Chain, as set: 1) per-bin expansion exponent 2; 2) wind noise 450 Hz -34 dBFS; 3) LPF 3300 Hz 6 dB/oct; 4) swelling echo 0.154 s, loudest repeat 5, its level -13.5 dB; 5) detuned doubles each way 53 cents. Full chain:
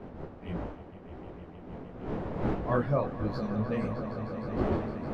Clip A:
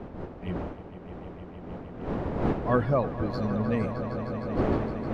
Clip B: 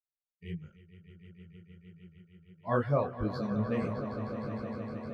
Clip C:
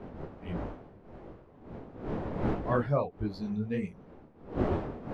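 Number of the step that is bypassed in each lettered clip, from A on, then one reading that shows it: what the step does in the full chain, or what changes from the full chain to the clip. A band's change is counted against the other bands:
5, loudness change +3.5 LU; 2, crest factor change +2.0 dB; 4, loudness change -1.0 LU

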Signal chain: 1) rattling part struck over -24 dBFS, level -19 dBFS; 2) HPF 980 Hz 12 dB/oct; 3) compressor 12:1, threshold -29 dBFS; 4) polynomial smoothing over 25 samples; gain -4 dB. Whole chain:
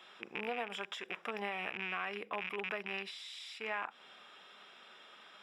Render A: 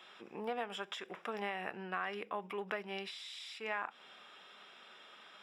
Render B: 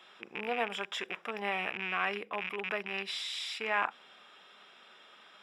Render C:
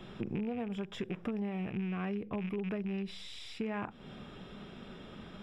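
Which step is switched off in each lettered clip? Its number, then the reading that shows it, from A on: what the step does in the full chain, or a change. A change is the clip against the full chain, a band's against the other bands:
1, 2 kHz band -3.5 dB; 3, mean gain reduction 3.5 dB; 2, 250 Hz band +19.5 dB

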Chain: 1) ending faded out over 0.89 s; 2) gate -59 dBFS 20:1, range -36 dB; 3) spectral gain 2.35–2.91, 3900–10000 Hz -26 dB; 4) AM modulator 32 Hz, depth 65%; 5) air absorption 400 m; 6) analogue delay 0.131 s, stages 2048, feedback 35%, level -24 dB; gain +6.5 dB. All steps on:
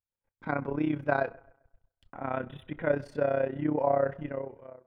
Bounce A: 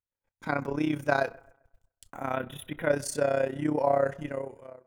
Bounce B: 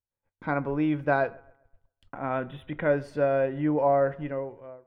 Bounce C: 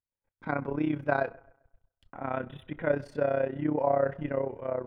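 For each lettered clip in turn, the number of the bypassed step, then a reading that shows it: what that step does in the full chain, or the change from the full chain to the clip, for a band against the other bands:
5, 2 kHz band +2.0 dB; 4, momentary loudness spread change +1 LU; 1, momentary loudness spread change -3 LU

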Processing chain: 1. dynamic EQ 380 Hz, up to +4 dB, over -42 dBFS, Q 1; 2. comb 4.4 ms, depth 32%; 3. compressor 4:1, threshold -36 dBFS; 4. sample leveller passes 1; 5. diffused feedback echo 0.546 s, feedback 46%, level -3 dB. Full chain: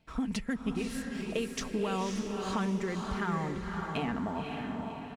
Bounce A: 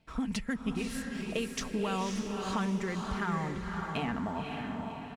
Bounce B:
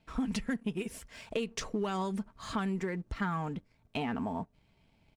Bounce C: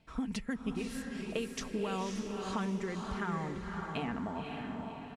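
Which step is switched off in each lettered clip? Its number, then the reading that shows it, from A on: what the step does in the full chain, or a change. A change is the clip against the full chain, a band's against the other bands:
1, 500 Hz band -2.0 dB; 5, echo-to-direct -2.0 dB to none; 4, crest factor change +3.0 dB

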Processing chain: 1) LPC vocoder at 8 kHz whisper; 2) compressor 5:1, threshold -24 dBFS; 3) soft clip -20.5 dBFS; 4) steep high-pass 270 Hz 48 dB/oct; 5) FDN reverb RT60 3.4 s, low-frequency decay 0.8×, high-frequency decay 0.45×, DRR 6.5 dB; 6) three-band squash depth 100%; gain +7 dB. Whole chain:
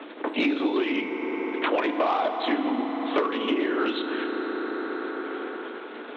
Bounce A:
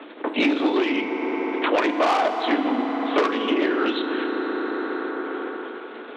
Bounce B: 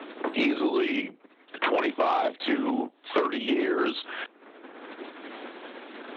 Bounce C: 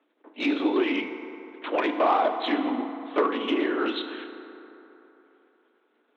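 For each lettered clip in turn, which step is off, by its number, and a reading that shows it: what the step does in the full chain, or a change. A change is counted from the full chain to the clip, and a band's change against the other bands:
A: 2, mean gain reduction 4.0 dB; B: 5, momentary loudness spread change +9 LU; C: 6, momentary loudness spread change +8 LU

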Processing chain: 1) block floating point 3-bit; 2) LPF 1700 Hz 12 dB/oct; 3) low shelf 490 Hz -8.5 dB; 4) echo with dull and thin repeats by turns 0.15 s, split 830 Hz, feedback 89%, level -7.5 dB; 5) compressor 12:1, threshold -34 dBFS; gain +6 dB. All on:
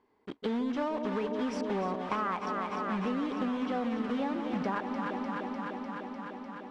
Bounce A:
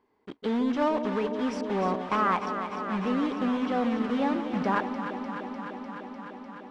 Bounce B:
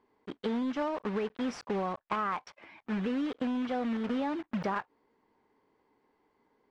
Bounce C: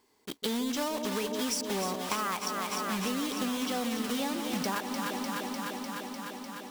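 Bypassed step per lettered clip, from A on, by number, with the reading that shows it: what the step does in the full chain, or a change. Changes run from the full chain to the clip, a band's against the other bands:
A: 5, mean gain reduction 3.0 dB; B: 4, momentary loudness spread change -2 LU; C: 2, 4 kHz band +13.0 dB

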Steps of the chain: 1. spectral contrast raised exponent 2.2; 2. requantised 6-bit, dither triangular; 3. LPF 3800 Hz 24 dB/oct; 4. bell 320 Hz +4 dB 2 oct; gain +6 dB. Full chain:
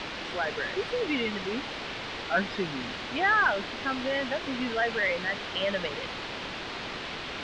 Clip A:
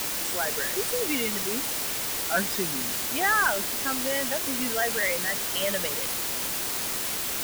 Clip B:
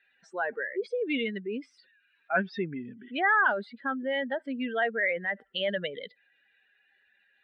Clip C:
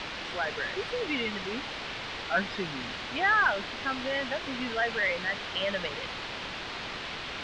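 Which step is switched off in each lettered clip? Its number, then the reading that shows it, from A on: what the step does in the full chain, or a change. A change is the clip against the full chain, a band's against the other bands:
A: 3, 8 kHz band +23.0 dB; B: 2, momentary loudness spread change +3 LU; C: 4, 250 Hz band -3.0 dB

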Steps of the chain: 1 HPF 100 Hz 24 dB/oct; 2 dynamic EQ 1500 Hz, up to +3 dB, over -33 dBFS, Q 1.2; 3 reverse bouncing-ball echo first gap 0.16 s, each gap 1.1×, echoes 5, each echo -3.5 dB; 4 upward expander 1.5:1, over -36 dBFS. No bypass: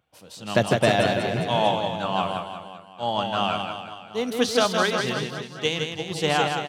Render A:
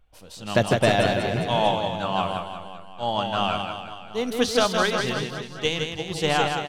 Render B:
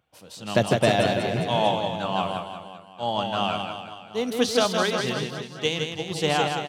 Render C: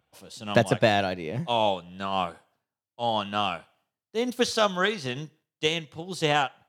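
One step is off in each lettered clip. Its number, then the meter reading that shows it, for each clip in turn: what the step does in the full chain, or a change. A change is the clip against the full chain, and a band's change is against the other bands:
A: 1, crest factor change -2.0 dB; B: 2, 2 kHz band -2.0 dB; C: 3, loudness change -2.5 LU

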